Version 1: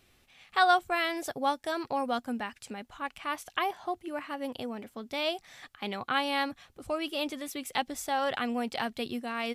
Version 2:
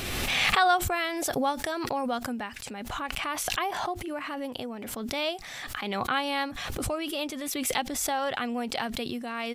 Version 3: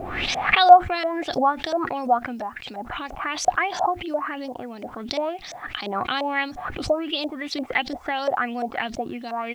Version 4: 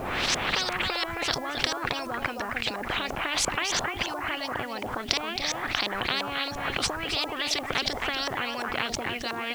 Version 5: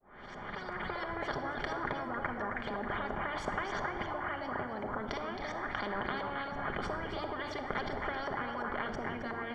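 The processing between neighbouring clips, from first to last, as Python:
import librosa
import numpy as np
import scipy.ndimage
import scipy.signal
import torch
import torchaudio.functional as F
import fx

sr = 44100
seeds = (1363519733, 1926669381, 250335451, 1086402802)

y1 = fx.pre_swell(x, sr, db_per_s=24.0)
y2 = fx.filter_lfo_lowpass(y1, sr, shape='saw_up', hz=2.9, low_hz=580.0, high_hz=6600.0, q=5.4)
y2 = fx.small_body(y2, sr, hz=(320.0, 720.0), ring_ms=30, db=6)
y2 = fx.quant_dither(y2, sr, seeds[0], bits=10, dither='none')
y2 = y2 * 10.0 ** (-1.0 / 20.0)
y3 = y2 + 10.0 ** (-13.0 / 20.0) * np.pad(y2, (int(268 * sr / 1000.0), 0))[:len(y2)]
y3 = fx.spectral_comp(y3, sr, ratio=10.0)
y3 = y3 * 10.0 ** (-1.0 / 20.0)
y4 = fx.fade_in_head(y3, sr, length_s=1.07)
y4 = scipy.signal.savgol_filter(y4, 41, 4, mode='constant')
y4 = fx.room_shoebox(y4, sr, seeds[1], volume_m3=3100.0, walls='mixed', distance_m=1.3)
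y4 = y4 * 10.0 ** (-5.5 / 20.0)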